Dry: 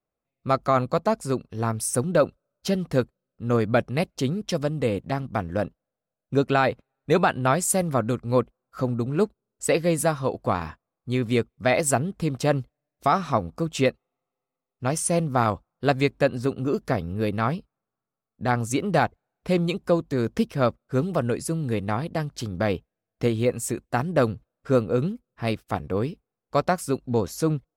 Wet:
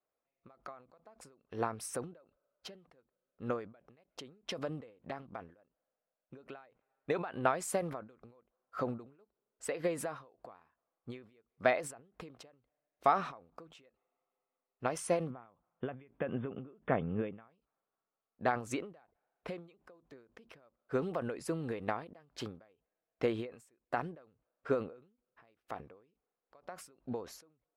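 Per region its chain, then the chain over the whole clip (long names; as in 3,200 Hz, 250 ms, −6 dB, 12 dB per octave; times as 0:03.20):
0:15.30–0:17.48: linear-phase brick-wall low-pass 3,600 Hz + parametric band 160 Hz +9.5 dB 1.3 octaves
whole clip: brickwall limiter −13 dBFS; bass and treble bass −15 dB, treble −15 dB; every ending faded ahead of time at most 120 dB per second; level −1 dB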